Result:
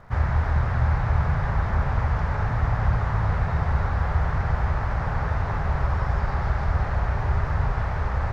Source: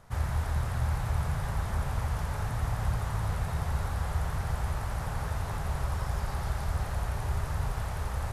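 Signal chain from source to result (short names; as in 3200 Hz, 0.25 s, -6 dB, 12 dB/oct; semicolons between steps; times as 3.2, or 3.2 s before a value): LPF 5300 Hz 24 dB/oct; resonant high shelf 2500 Hz -6.5 dB, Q 1.5; crackle 160/s -63 dBFS; gain +7.5 dB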